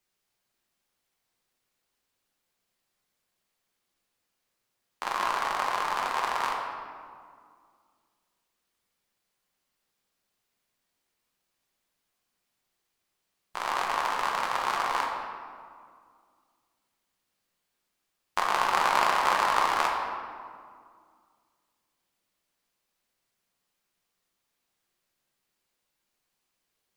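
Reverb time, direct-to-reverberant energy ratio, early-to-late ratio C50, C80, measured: 2.1 s, -1.0 dB, 2.5 dB, 3.5 dB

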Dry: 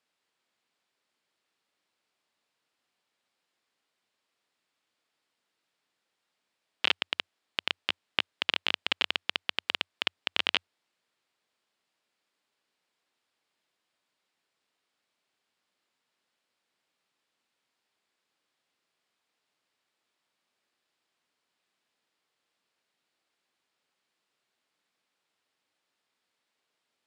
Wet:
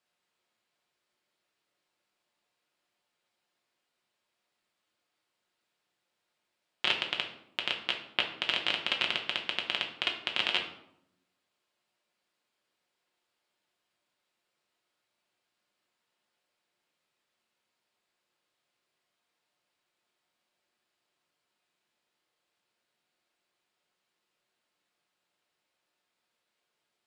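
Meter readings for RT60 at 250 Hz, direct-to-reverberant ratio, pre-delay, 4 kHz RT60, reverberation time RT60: 1.1 s, 0.5 dB, 5 ms, 0.50 s, 0.80 s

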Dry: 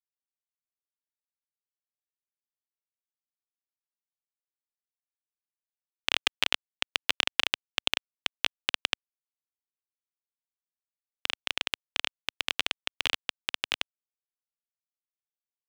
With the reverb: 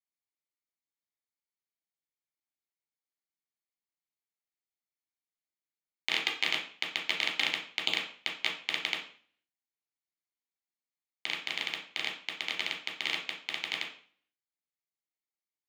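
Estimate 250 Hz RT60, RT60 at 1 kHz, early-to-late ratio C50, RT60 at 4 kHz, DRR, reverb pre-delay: 0.50 s, 0.45 s, 8.0 dB, 0.45 s, 0.5 dB, 9 ms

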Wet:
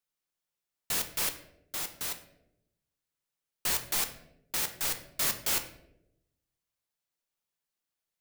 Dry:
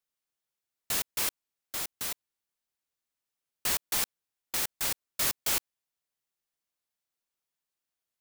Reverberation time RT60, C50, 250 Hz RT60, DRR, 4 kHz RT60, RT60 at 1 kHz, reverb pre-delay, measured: 0.85 s, 11.0 dB, 1.1 s, 6.5 dB, 0.50 s, 0.65 s, 5 ms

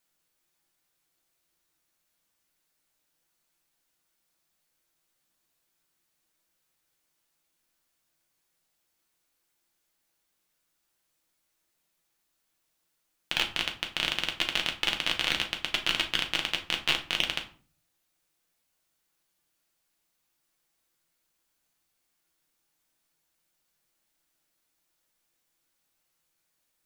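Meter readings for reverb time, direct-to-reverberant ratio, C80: 0.45 s, 2.0 dB, 16.5 dB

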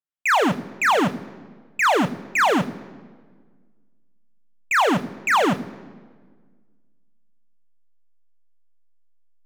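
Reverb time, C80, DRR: 1.6 s, 19.0 dB, 9.5 dB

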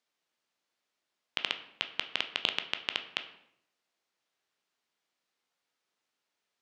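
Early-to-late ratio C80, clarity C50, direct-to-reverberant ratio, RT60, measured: 14.0 dB, 12.0 dB, 7.0 dB, 0.70 s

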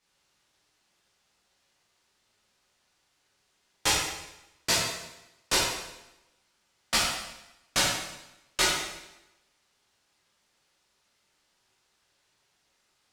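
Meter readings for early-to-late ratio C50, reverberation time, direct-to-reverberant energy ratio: 0.0 dB, 0.95 s, -7.5 dB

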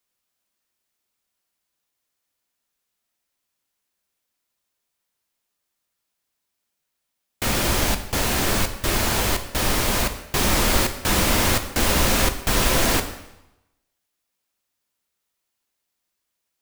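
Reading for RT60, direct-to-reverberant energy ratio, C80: 0.95 s, 7.0 dB, 13.0 dB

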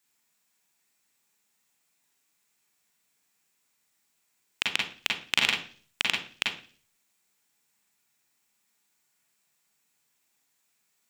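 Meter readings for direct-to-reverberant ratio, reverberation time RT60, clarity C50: -2.0 dB, 0.45 s, 5.0 dB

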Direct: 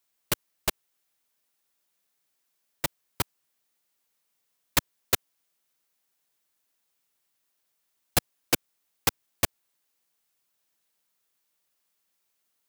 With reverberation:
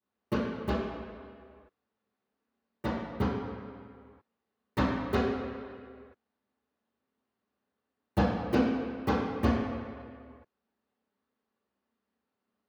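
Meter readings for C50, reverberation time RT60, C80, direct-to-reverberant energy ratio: -1.0 dB, 2.1 s, 1.5 dB, -13.5 dB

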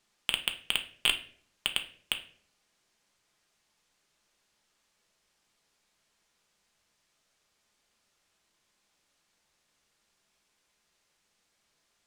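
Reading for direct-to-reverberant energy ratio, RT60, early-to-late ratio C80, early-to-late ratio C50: 5.0 dB, 0.55 s, 17.0 dB, 12.5 dB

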